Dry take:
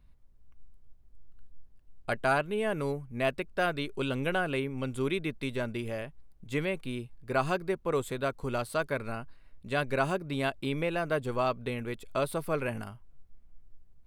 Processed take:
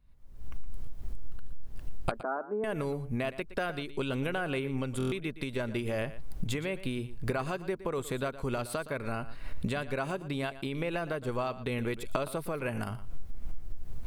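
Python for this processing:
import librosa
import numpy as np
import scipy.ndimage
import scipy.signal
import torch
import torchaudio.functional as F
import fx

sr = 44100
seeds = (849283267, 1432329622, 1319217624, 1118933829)

p1 = fx.recorder_agc(x, sr, target_db=-17.5, rise_db_per_s=58.0, max_gain_db=30)
p2 = fx.cheby1_bandpass(p1, sr, low_hz=220.0, high_hz=1400.0, order=4, at=(2.11, 2.64))
p3 = p2 + fx.echo_single(p2, sr, ms=117, db=-15.0, dry=0)
p4 = fx.buffer_glitch(p3, sr, at_s=(4.98,), block=1024, repeats=5)
y = F.gain(torch.from_numpy(p4), -6.5).numpy()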